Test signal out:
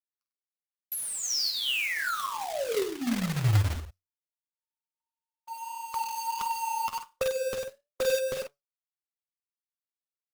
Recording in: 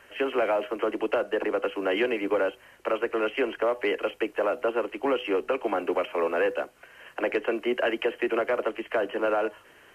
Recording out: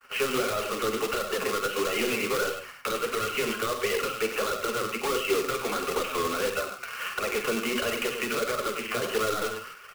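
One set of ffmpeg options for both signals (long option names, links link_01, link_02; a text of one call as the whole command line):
ffmpeg -i in.wav -filter_complex "[0:a]asplit=2[link_01][link_02];[link_02]alimiter=limit=-21.5dB:level=0:latency=1:release=15,volume=2dB[link_03];[link_01][link_03]amix=inputs=2:normalize=0,superequalizer=6b=0.251:8b=0.631:10b=3.98:12b=1.78:14b=3.16,aeval=exprs='0.75*(cos(1*acos(clip(val(0)/0.75,-1,1)))-cos(1*PI/2))+0.266*(cos(5*acos(clip(val(0)/0.75,-1,1)))-cos(5*PI/2))+0.0237*(cos(7*acos(clip(val(0)/0.75,-1,1)))-cos(7*PI/2))':channel_layout=same,agate=range=-49dB:threshold=-32dB:ratio=16:detection=peak,asoftclip=type=tanh:threshold=-5dB,asplit=2[link_04][link_05];[link_05]adelay=48,volume=-8dB[link_06];[link_04][link_06]amix=inputs=2:normalize=0,asplit=2[link_07][link_08];[link_08]aecho=0:1:98:0.335[link_09];[link_07][link_09]amix=inputs=2:normalize=0,acrossover=split=400[link_10][link_11];[link_11]acompressor=threshold=-25dB:ratio=6[link_12];[link_10][link_12]amix=inputs=2:normalize=0,flanger=delay=7:depth=4.1:regen=76:speed=0.35:shape=sinusoidal,acrusher=bits=2:mode=log:mix=0:aa=0.000001,flanger=delay=1.5:depth=7.8:regen=30:speed=1.5:shape=sinusoidal,adynamicequalizer=threshold=0.00708:dfrequency=1500:dqfactor=0.7:tfrequency=1500:tqfactor=0.7:attack=5:release=100:ratio=0.375:range=2.5:mode=boostabove:tftype=highshelf" out.wav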